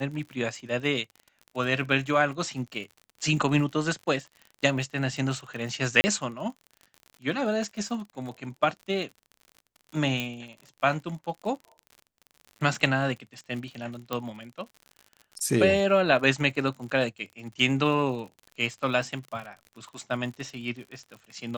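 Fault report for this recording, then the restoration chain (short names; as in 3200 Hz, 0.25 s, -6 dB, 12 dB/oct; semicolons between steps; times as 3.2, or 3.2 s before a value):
crackle 54/s -37 dBFS
6.01–6.04 gap 30 ms
10.2 pop -15 dBFS
14.13 pop -15 dBFS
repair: de-click; interpolate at 6.01, 30 ms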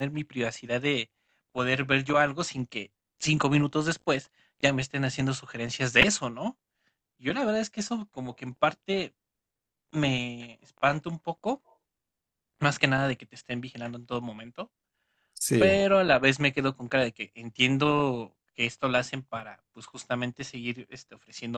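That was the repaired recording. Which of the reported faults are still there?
10.2 pop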